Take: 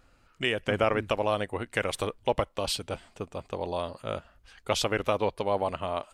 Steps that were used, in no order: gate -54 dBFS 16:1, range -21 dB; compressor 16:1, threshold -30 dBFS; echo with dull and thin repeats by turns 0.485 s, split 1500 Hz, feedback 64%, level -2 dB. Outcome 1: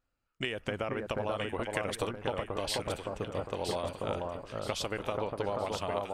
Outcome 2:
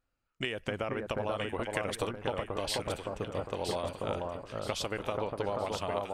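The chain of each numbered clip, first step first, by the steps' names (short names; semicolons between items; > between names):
compressor > echo with dull and thin repeats by turns > gate; gate > compressor > echo with dull and thin repeats by turns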